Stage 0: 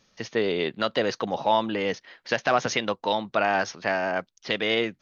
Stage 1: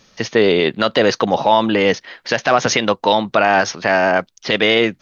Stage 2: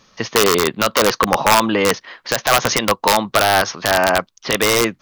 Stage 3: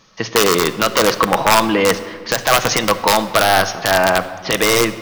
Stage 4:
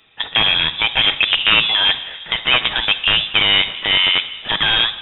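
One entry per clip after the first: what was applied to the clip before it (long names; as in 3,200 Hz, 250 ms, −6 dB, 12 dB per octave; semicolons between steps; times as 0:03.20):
boost into a limiter +13 dB; level −1 dB
wrap-around overflow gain 4 dB; parametric band 1,100 Hz +8 dB 0.46 octaves; level −1.5 dB
in parallel at −4.5 dB: wrap-around overflow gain 3 dB; on the sum: rectangular room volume 2,400 cubic metres, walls mixed, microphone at 0.63 metres; level −3.5 dB
voice inversion scrambler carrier 3,700 Hz; level −1 dB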